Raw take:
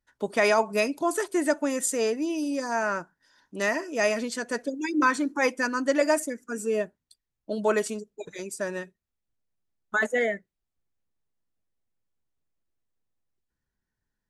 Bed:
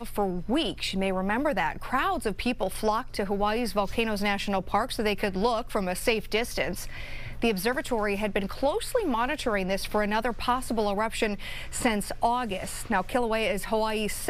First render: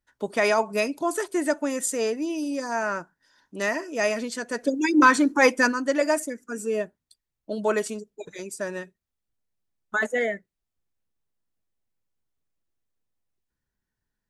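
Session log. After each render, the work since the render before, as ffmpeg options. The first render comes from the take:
-filter_complex "[0:a]asplit=3[s0][s1][s2];[s0]afade=t=out:st=4.62:d=0.02[s3];[s1]acontrast=74,afade=t=in:st=4.62:d=0.02,afade=t=out:st=5.71:d=0.02[s4];[s2]afade=t=in:st=5.71:d=0.02[s5];[s3][s4][s5]amix=inputs=3:normalize=0"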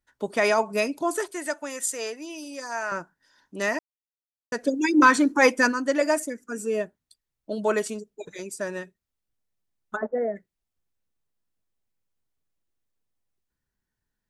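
-filter_complex "[0:a]asettb=1/sr,asplit=3[s0][s1][s2];[s0]atrim=end=1.314[s3];[s1]atrim=start=1.31:end=2.92,asetpts=PTS-STARTPTS,afade=t=in:d=0.004:c=qsin,afade=t=out:st=1.606:d=0.004:c=qsin,highpass=f=1000:p=1[s4];[s2]atrim=start=2.916[s5];[s3][s4]acrossfade=d=0.004:c1=hsin:c2=qsin[s6];[s6][s5]acrossfade=d=0.004:c1=qsin:c2=hsin,asplit=3[s7][s8][s9];[s7]afade=t=out:st=9.95:d=0.02[s10];[s8]lowpass=f=1100:w=0.5412,lowpass=f=1100:w=1.3066,afade=t=in:st=9.95:d=0.02,afade=t=out:st=10.35:d=0.02[s11];[s9]afade=t=in:st=10.35:d=0.02[s12];[s10][s11][s12]amix=inputs=3:normalize=0,asplit=3[s13][s14][s15];[s13]atrim=end=3.79,asetpts=PTS-STARTPTS,afade=t=out:st=3.786:d=0.004:c=hsin[s16];[s14]atrim=start=3.79:end=4.52,asetpts=PTS-STARTPTS,volume=0[s17];[s15]atrim=start=4.52,asetpts=PTS-STARTPTS,afade=t=in:d=0.004:c=hsin[s18];[s16][s17][s18]concat=n=3:v=0:a=1"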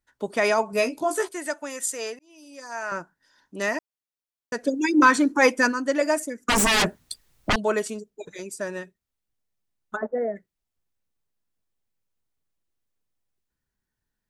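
-filter_complex "[0:a]asettb=1/sr,asplit=3[s0][s1][s2];[s0]atrim=end=0.714[s3];[s1]atrim=start=0.71:end=1.29,asetpts=PTS-STARTPTS,afade=t=in:d=0.004:c=qsin,afade=t=out:st=0.576:d=0.004:c=qsin,asplit=2[s4][s5];[s5]adelay=16,volume=0.631[s6];[s4][s6]amix=inputs=2:normalize=0,atrim=end_sample=25578[s7];[s2]atrim=start=1.286[s8];[s3][s7]acrossfade=d=0.004:c1=hsin:c2=qsin[s9];[s9][s8]acrossfade=d=0.004:c1=qsin:c2=hsin,asettb=1/sr,asplit=3[s10][s11][s12];[s10]atrim=end=6.484[s13];[s11]atrim=start=6.48:end=7.56,asetpts=PTS-STARTPTS,afade=t=in:d=0.004:c=qsin,afade=t=out:st=1.076:d=0.004:c=qsin,aeval=exprs='0.15*sin(PI/2*7.94*val(0)/0.15)':c=same[s14];[s12]atrim=start=7.556[s15];[s13][s14]acrossfade=d=0.004:c1=hsin:c2=qsin[s16];[s16][s15]acrossfade=d=0.004:c1=qsin:c2=hsin,asplit=2[s17][s18];[s17]atrim=end=2.19,asetpts=PTS-STARTPTS,afade=t=out:st=2.186:d=0.004:c=hsin[s19];[s18]atrim=start=2.19,asetpts=PTS-STARTPTS,afade=t=in:d=0.76[s20];[s19][s20]concat=n=2:v=0:a=1"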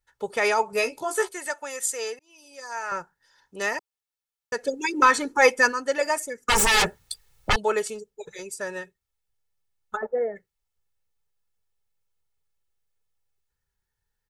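-af "equalizer=f=310:t=o:w=0.47:g=-12,aecho=1:1:2.3:0.54"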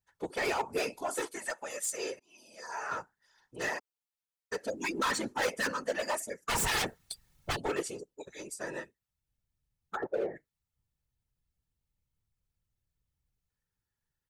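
-af "asoftclip=type=hard:threshold=0.0794,afftfilt=real='hypot(re,im)*cos(2*PI*random(0))':imag='hypot(re,im)*sin(2*PI*random(1))':win_size=512:overlap=0.75"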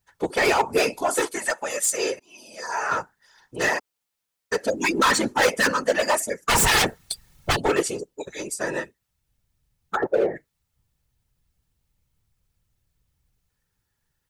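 -af "volume=3.76"

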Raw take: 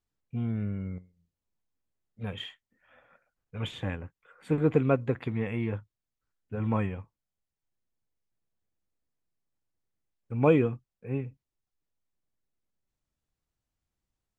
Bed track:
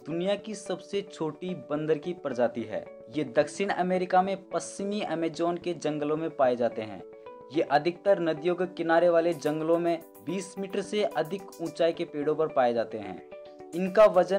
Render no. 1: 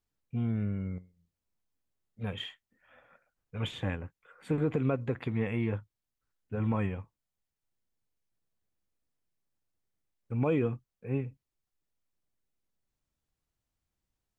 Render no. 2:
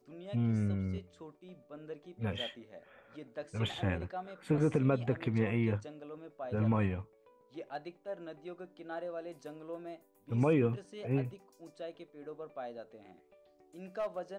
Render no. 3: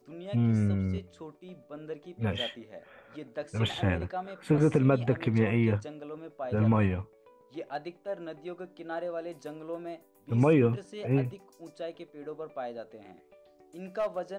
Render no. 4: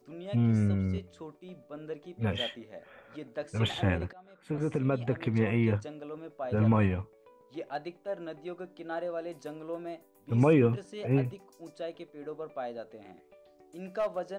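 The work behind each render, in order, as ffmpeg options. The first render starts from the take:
-af "alimiter=limit=0.112:level=0:latency=1:release=72"
-filter_complex "[1:a]volume=0.119[s0];[0:a][s0]amix=inputs=2:normalize=0"
-af "volume=1.88"
-filter_complex "[0:a]asplit=2[s0][s1];[s0]atrim=end=4.13,asetpts=PTS-STARTPTS,afade=t=out:st=4.126:d=0.004:c=hsin:silence=0.0944061[s2];[s1]atrim=start=4.13,asetpts=PTS-STARTPTS,afade=t=in:d=2.16:c=qsin:silence=0.0944061[s3];[s2][s3]concat=n=2:v=0:a=1"

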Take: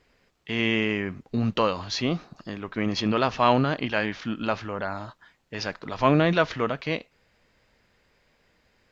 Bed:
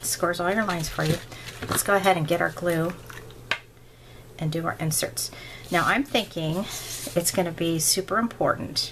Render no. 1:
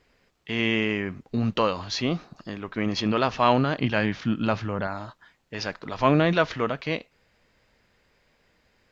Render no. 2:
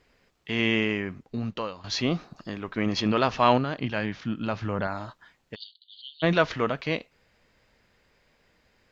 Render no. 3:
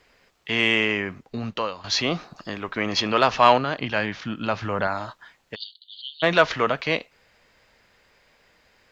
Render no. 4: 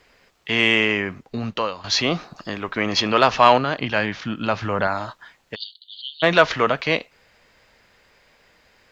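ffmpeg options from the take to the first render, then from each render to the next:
-filter_complex "[0:a]asettb=1/sr,asplit=3[s0][s1][s2];[s0]atrim=end=3.794[s3];[s1]atrim=start=3.79:end=4.87,asetpts=PTS-STARTPTS,afade=t=in:d=0.004:c=qsin,afade=t=out:st=1.076:d=0.004:c=qsin,equalizer=f=130:t=o:w=1.8:g=9[s4];[s2]atrim=start=4.866[s5];[s3][s4]acrossfade=d=0.004:c1=hsin:c2=qsin[s6];[s6][s5]acrossfade=d=0.004:c1=qsin:c2=hsin"
-filter_complex "[0:a]asplit=3[s0][s1][s2];[s0]afade=t=out:st=5.54:d=0.02[s3];[s1]asuperpass=centerf=3700:order=20:qfactor=2.2,afade=t=in:st=5.54:d=0.02,afade=t=out:st=6.22:d=0.02[s4];[s2]afade=t=in:st=6.22:d=0.02[s5];[s3][s4][s5]amix=inputs=3:normalize=0,asplit=4[s6][s7][s8][s9];[s6]atrim=end=1.84,asetpts=PTS-STARTPTS,afade=t=out:st=0.77:d=1.07:silence=0.188365[s10];[s7]atrim=start=1.84:end=3.582,asetpts=PTS-STARTPTS,afade=t=in:d=0.004:c=hsin:silence=0.188365[s11];[s8]atrim=start=3.578:end=4.622,asetpts=PTS-STARTPTS,volume=0.562[s12];[s9]atrim=start=4.618[s13];[s10][s11]concat=n=2:v=0:a=1[s14];[s14][s12]acrossfade=d=0.004:c1=hsin:c2=hsin[s15];[s15][s13]acrossfade=d=0.004:c1=hsin:c2=hsin"
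-filter_complex "[0:a]acrossover=split=470[s0][s1];[s0]alimiter=limit=0.0708:level=0:latency=1[s2];[s1]acontrast=71[s3];[s2][s3]amix=inputs=2:normalize=0"
-af "volume=1.41,alimiter=limit=0.794:level=0:latency=1"

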